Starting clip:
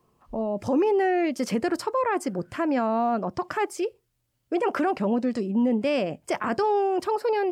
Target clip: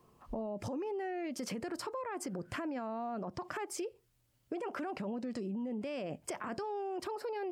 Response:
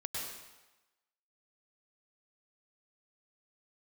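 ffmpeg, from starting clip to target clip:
-af "alimiter=level_in=1.19:limit=0.0631:level=0:latency=1:release=63,volume=0.841,acompressor=threshold=0.0126:ratio=4,volume=1.12"

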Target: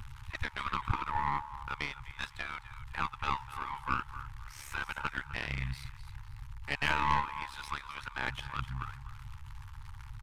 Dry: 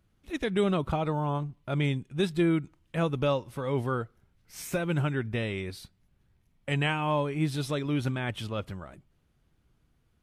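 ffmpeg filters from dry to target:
-filter_complex "[0:a]aeval=exprs='val(0)+0.5*0.00944*sgn(val(0))':c=same,afftfilt=real='re*(1-between(b*sr/4096,100,830))':imag='im*(1-between(b*sr/4096,100,830))':win_size=4096:overlap=0.75,aeval=exprs='(tanh(10*val(0)+0.1)-tanh(0.1))/10':c=same,asplit=2[s0][s1];[s1]aecho=0:1:255|510|765:0.266|0.0772|0.0224[s2];[s0][s2]amix=inputs=2:normalize=0,aresample=32000,aresample=44100,aeval=exprs='val(0)*sin(2*PI*35*n/s)':c=same,asplit=2[s3][s4];[s4]adynamicsmooth=sensitivity=5:basefreq=1500,volume=1.12[s5];[s3][s5]amix=inputs=2:normalize=0,aeval=exprs='0.168*(cos(1*acos(clip(val(0)/0.168,-1,1)))-cos(1*PI/2))+0.0188*(cos(2*acos(clip(val(0)/0.168,-1,1)))-cos(2*PI/2))+0.0422*(cos(4*acos(clip(val(0)/0.168,-1,1)))-cos(4*PI/2))+0.00299*(cos(8*acos(clip(val(0)/0.168,-1,1)))-cos(8*PI/2))':c=same,acompressor=mode=upward:threshold=0.00794:ratio=2.5,highshelf=f=4700:g=-12"

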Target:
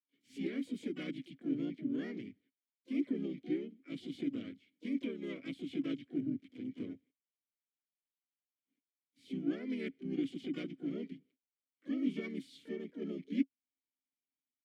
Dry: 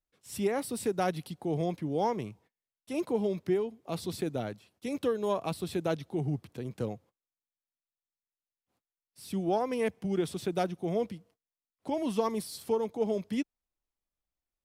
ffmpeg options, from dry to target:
-filter_complex "[0:a]asplit=4[s0][s1][s2][s3];[s1]asetrate=37084,aresample=44100,atempo=1.18921,volume=0.891[s4];[s2]asetrate=58866,aresample=44100,atempo=0.749154,volume=0.316[s5];[s3]asetrate=88200,aresample=44100,atempo=0.5,volume=0.501[s6];[s0][s4][s5][s6]amix=inputs=4:normalize=0,asplit=3[s7][s8][s9];[s7]bandpass=f=270:t=q:w=8,volume=1[s10];[s8]bandpass=f=2290:t=q:w=8,volume=0.501[s11];[s9]bandpass=f=3010:t=q:w=8,volume=0.355[s12];[s10][s11][s12]amix=inputs=3:normalize=0,volume=1.19"

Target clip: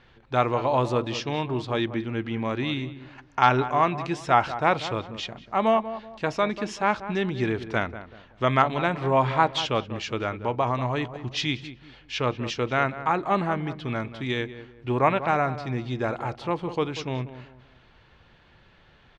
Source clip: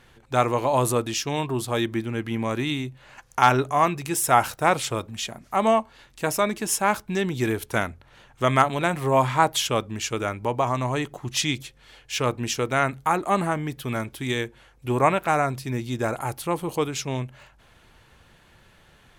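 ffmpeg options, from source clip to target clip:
-filter_complex "[0:a]lowpass=f=4700:w=0.5412,lowpass=f=4700:w=1.3066,asplit=2[s0][s1];[s1]adelay=190,lowpass=f=1500:p=1,volume=0.251,asplit=2[s2][s3];[s3]adelay=190,lowpass=f=1500:p=1,volume=0.34,asplit=2[s4][s5];[s5]adelay=190,lowpass=f=1500:p=1,volume=0.34[s6];[s0][s2][s4][s6]amix=inputs=4:normalize=0,volume=0.841"

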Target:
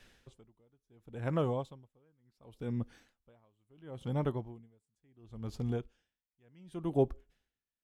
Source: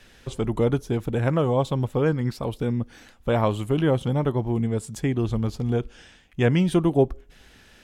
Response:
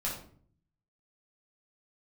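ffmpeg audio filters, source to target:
-af "aeval=exprs='val(0)*pow(10,-40*(0.5-0.5*cos(2*PI*0.71*n/s))/20)':c=same,volume=0.376"

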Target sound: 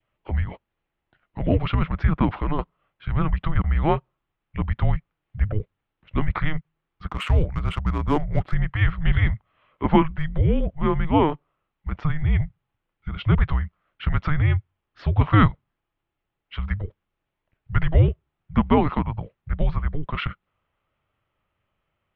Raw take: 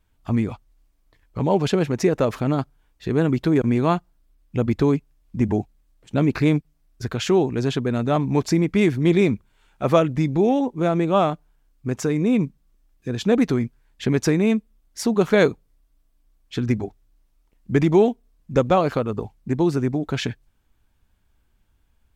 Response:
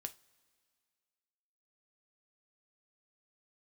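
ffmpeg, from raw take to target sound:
-filter_complex "[0:a]adynamicequalizer=threshold=0.00794:dfrequency=1500:dqfactor=3:tfrequency=1500:tqfactor=3:attack=5:release=100:ratio=0.375:range=3:mode=boostabove:tftype=bell,highpass=f=180:t=q:w=0.5412,highpass=f=180:t=q:w=1.307,lowpass=f=3500:t=q:w=0.5176,lowpass=f=3500:t=q:w=0.7071,lowpass=f=3500:t=q:w=1.932,afreqshift=-310,asettb=1/sr,asplit=3[s0][s1][s2];[s0]atrim=end=7.074[s3];[s1]atrim=start=7.07:end=8.54,asetpts=PTS-STARTPTS,afade=t=in:d=0.004:c=qsin,afade=t=out:st=1.466:d=0.004:c=qsin,adynamicsmooth=sensitivity=4:basefreq=2200[s4];[s2]atrim=start=8.536[s5];[s3][s4]acrossfade=d=0.004:c1=hsin:c2=qsin[s6];[s6][s5]acrossfade=d=0.004:c1=qsin:c2=hsin"

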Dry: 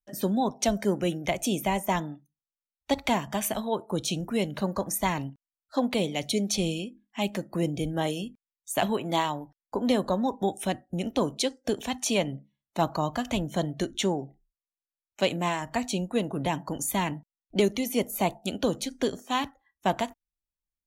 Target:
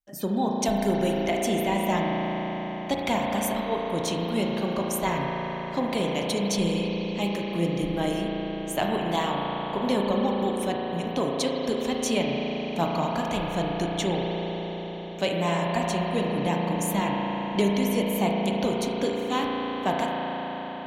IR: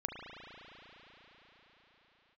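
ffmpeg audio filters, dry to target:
-filter_complex "[0:a]asettb=1/sr,asplit=3[s0][s1][s2];[s0]atrim=end=0.654[s3];[s1]atrim=start=0.65:end=1.21,asetpts=PTS-STARTPTS,afade=t=in:d=0.004:c=qsin,afade=t=out:st=0.556:d=0.004:c=qsin,highshelf=f=7900:g=7.5[s4];[s2]atrim=start=1.206[s5];[s3][s4]acrossfade=d=0.004:c1=hsin:c2=qsin[s6];[s6][s5]acrossfade=d=0.004:c1=qsin:c2=hsin[s7];[1:a]atrim=start_sample=2205[s8];[s7][s8]afir=irnorm=-1:irlink=0"

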